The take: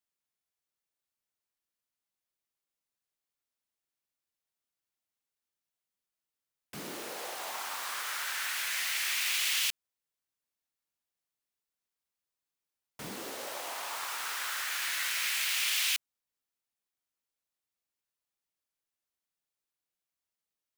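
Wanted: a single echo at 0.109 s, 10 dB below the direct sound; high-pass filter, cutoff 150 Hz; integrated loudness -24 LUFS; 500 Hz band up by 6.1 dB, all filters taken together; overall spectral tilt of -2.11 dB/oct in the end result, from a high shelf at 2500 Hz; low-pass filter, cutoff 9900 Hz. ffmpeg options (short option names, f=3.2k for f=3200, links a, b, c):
-af "highpass=150,lowpass=9.9k,equalizer=f=500:t=o:g=8,highshelf=f=2.5k:g=-8.5,aecho=1:1:109:0.316,volume=12.5dB"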